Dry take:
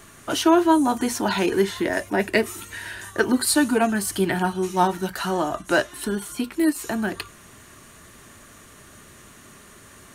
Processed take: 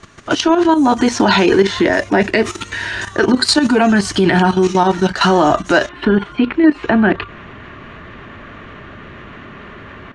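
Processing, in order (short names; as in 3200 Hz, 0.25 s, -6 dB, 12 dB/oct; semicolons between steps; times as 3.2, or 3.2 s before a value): AGC gain up to 7 dB; LPF 6200 Hz 24 dB/oct, from 5.89 s 2900 Hz; level quantiser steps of 12 dB; maximiser +14 dB; gain -1 dB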